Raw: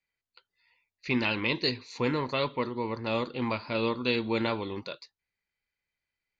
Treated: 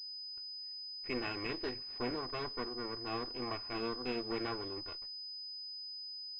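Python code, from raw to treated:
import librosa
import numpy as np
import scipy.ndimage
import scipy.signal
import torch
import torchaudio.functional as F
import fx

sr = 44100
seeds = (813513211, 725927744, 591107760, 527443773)

y = fx.lower_of_two(x, sr, delay_ms=2.7)
y = fx.pwm(y, sr, carrier_hz=5000.0)
y = y * 10.0 ** (-8.0 / 20.0)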